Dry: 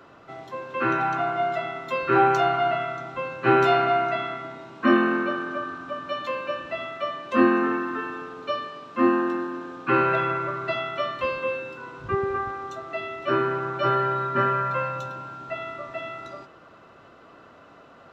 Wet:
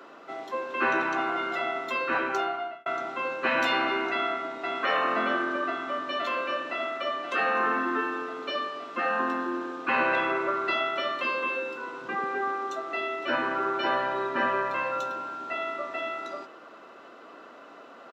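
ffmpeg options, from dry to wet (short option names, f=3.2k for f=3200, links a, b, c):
-filter_complex "[0:a]asplit=2[a][b];[b]afade=t=in:st=4.11:d=0.01,afade=t=out:st=4.65:d=0.01,aecho=0:1:520|1040|1560|2080|2600|3120|3640|4160|4680|5200|5720|6240:0.562341|0.421756|0.316317|0.237238|0.177928|0.133446|0.100085|0.0750635|0.0562976|0.0422232|0.0316674|0.0237506[c];[a][c]amix=inputs=2:normalize=0,asplit=2[d][e];[d]atrim=end=2.86,asetpts=PTS-STARTPTS,afade=t=out:st=1.84:d=1.02[f];[e]atrim=start=2.86,asetpts=PTS-STARTPTS,afade=t=in:d=0.004:c=hsin[g];[f][g]concat=n=2:v=0:a=1,afftfilt=real='re*lt(hypot(re,im),0.316)':imag='im*lt(hypot(re,im),0.316)':win_size=1024:overlap=0.75,highpass=f=240:w=0.5412,highpass=f=240:w=1.3066,volume=2.5dB"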